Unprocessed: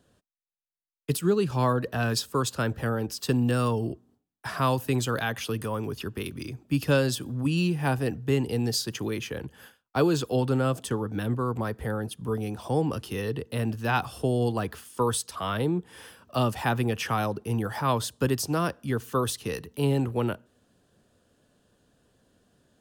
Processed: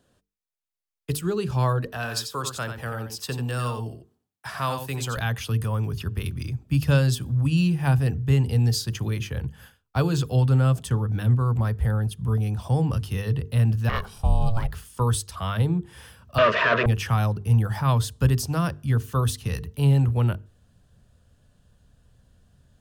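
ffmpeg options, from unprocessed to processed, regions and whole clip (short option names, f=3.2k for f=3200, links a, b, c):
-filter_complex "[0:a]asettb=1/sr,asplit=3[a][b][c];[a]atrim=end=1.864[d];[b]atrim=start=1.86:end=5.17,asetpts=PTS-STARTPTS,afade=t=in:d=0.004:c=qsin,afade=t=out:st=3.306:d=0.004:c=qsin,highpass=f=450:p=1,aecho=1:1:89:0.422,atrim=end_sample=145971[e];[c]atrim=start=5.166[f];[d][e]acrossfade=d=0.004:c1=hsin:c2=qsin[g];[g][f]acrossfade=d=0.004:c1=qsin:c2=hsin,asettb=1/sr,asplit=3[h][i][j];[h]atrim=end=13.894[k];[i]atrim=start=13.89:end=14.7,asetpts=PTS-STARTPTS,afade=t=in:d=0.004:c=qsin,afade=t=out:st=0.806:d=0.004:c=qsin,highpass=170,aeval=exprs='val(0)*sin(2*PI*340*n/s)':c=same[l];[j]atrim=start=14.696[m];[k][l]acrossfade=d=0.004:c1=hsin:c2=qsin[n];[n][m]acrossfade=d=0.004:c1=qsin:c2=hsin,asettb=1/sr,asplit=3[o][p][q];[o]atrim=end=16.384[r];[p]atrim=start=16.38:end=16.86,asetpts=PTS-STARTPTS,afade=t=in:d=0.004:c=qsin,afade=t=out:st=0.476:d=0.004:c=qsin,asplit=2[s][t];[t]highpass=f=720:p=1,volume=34dB,asoftclip=type=tanh:threshold=-13.5dB[u];[s][u]amix=inputs=2:normalize=0,lowpass=f=1.9k:p=1,volume=-6dB,asuperstop=centerf=800:order=8:qfactor=3.2,highpass=330,equalizer=f=420:t=q:w=4:g=9,equalizer=f=650:t=q:w=4:g=10,equalizer=f=1.2k:t=q:w=4:g=4,equalizer=f=1.7k:t=q:w=4:g=7,equalizer=f=2.7k:t=q:w=4:g=4,equalizer=f=4.4k:t=q:w=4:g=-3,lowpass=f=4.6k:w=0.5412,lowpass=f=4.6k:w=1.3066[v];[q]atrim=start=16.856[w];[r][v]acrossfade=d=0.004:c1=hsin:c2=qsin[x];[x][w]acrossfade=d=0.004:c1=qsin:c2=hsin,bandreject=f=50:t=h:w=6,bandreject=f=100:t=h:w=6,bandreject=f=150:t=h:w=6,bandreject=f=200:t=h:w=6,bandreject=f=250:t=h:w=6,bandreject=f=300:t=h:w=6,bandreject=f=350:t=h:w=6,bandreject=f=400:t=h:w=6,bandreject=f=450:t=h:w=6,asubboost=boost=10:cutoff=100"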